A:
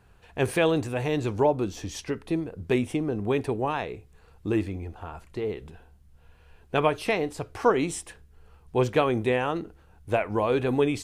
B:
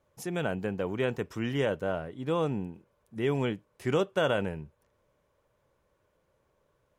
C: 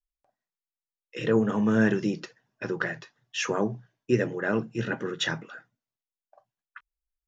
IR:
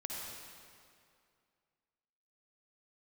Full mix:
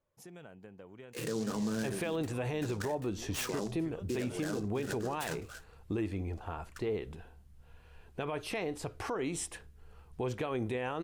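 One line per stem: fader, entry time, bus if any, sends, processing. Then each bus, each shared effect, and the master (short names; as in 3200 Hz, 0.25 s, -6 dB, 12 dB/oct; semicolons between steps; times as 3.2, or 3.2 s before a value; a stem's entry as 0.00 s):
-1.5 dB, 1.45 s, bus A, no send, dry
-12.0 dB, 0.00 s, no bus, no send, compressor 6:1, threshold -36 dBFS, peak gain reduction 13.5 dB
-5.5 dB, 0.00 s, bus A, no send, noise-modulated delay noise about 5300 Hz, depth 0.063 ms
bus A: 0.0 dB, compressor 2.5:1, threshold -30 dBFS, peak gain reduction 9.5 dB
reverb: off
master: limiter -26 dBFS, peak gain reduction 9.5 dB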